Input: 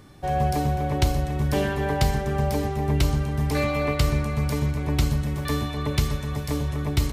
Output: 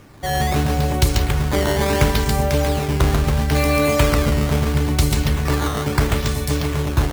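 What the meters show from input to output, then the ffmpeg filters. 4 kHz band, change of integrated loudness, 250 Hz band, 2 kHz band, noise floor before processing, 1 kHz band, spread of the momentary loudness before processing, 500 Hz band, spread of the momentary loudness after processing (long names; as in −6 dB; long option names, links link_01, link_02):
+8.0 dB, +6.0 dB, +5.5 dB, +8.0 dB, −31 dBFS, +5.0 dB, 4 LU, +6.5 dB, 4 LU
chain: -af "aemphasis=mode=production:type=cd,aecho=1:1:139.9|279.9:0.708|0.562,acrusher=samples=10:mix=1:aa=0.000001:lfo=1:lforange=16:lforate=0.74,volume=3.5dB"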